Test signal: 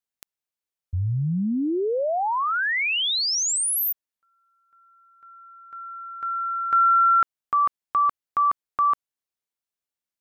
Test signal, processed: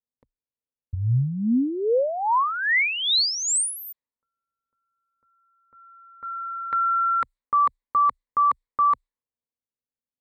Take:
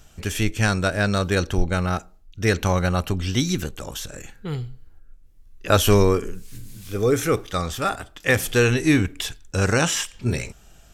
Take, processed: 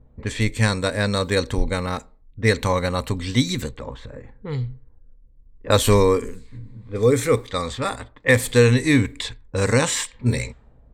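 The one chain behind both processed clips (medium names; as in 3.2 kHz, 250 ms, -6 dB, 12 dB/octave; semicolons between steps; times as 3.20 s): level-controlled noise filter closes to 490 Hz, open at -20 dBFS; rippled EQ curve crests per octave 0.99, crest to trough 10 dB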